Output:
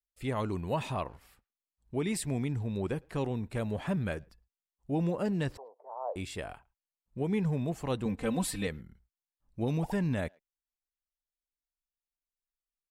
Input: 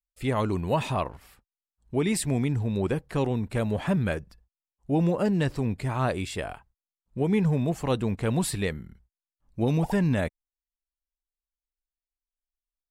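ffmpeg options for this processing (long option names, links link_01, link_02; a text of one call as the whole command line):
ffmpeg -i in.wav -filter_complex "[0:a]asettb=1/sr,asplit=3[link_01][link_02][link_03];[link_01]atrim=end=5.574[link_04];[link_02]atrim=start=5.57:end=6.16,asetpts=PTS-STARTPTS,afade=type=in:duration=0.004:curve=qsin,afade=type=out:start_time=0.586:duration=0.004:curve=qsin,asuperpass=centerf=690:order=8:qfactor=1.3[link_05];[link_03]atrim=start=6.156[link_06];[link_04][link_05]acrossfade=duration=0.004:curve1=hsin:curve2=qsin[link_07];[link_07][link_06]acrossfade=duration=0.004:curve1=qsin:curve2=hsin,asettb=1/sr,asplit=3[link_08][link_09][link_10];[link_08]atrim=end=8.054[link_11];[link_09]atrim=start=8.05:end=8.67,asetpts=PTS-STARTPTS,afade=type=in:duration=0.004:curve=qsin,afade=type=out:start_time=0.616:duration=0.004:curve=qsin,aecho=1:1:3.9:0.89,atrim=end_sample=27342[link_12];[link_10]atrim=start=8.666[link_13];[link_11][link_12]acrossfade=duration=0.004:curve1=hsin:curve2=qsin[link_14];[link_14][link_13]acrossfade=duration=0.004:curve1=qsin:curve2=hsin,asplit=2[link_15][link_16];[link_16]adelay=110,highpass=300,lowpass=3400,asoftclip=type=hard:threshold=-23dB,volume=-28dB[link_17];[link_15][link_17]amix=inputs=2:normalize=0,volume=-6.5dB" out.wav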